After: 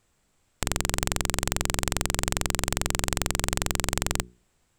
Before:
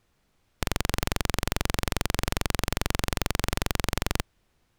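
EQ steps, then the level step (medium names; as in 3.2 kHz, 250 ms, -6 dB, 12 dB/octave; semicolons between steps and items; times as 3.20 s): peaking EQ 7.7 kHz +12.5 dB 0.32 oct; hum notches 60/120/180/240/300/360/420 Hz; 0.0 dB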